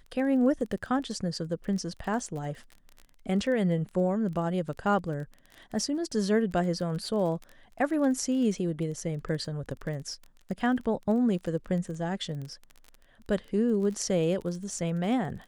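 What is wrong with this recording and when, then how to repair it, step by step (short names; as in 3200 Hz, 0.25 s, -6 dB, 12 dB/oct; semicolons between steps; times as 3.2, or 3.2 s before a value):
crackle 22/s -36 dBFS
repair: de-click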